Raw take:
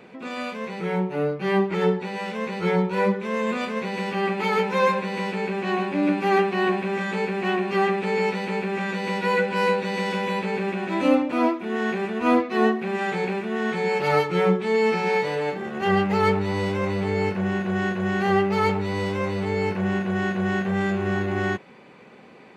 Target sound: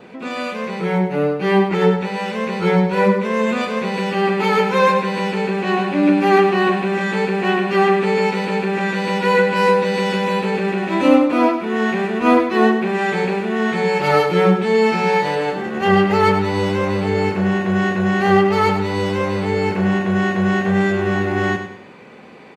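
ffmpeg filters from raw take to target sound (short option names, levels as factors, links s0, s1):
-filter_complex "[0:a]adynamicequalizer=threshold=0.00708:dfrequency=2200:dqfactor=7:tfrequency=2200:tqfactor=7:attack=5:release=100:ratio=0.375:range=1.5:mode=cutabove:tftype=bell,asplit=2[s0][s1];[s1]aecho=0:1:99|198|297|396:0.355|0.128|0.046|0.0166[s2];[s0][s2]amix=inputs=2:normalize=0,volume=2"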